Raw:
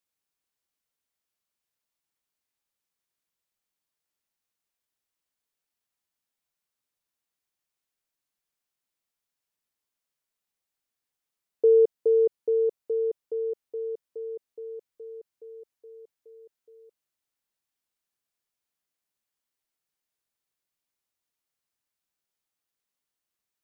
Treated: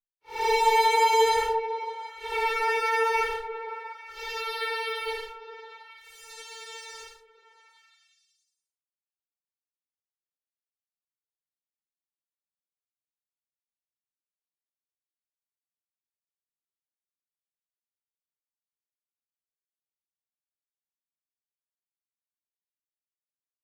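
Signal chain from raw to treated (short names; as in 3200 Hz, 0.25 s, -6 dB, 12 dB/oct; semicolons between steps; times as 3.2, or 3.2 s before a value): minimum comb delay 0.92 ms; harmonic-percussive split percussive -18 dB; fuzz box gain 46 dB, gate -47 dBFS; Paulstretch 4.5×, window 0.10 s, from 14.48; on a send: delay with a stepping band-pass 0.175 s, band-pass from 240 Hz, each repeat 0.7 oct, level -4 dB; on the sum: gain -2.5 dB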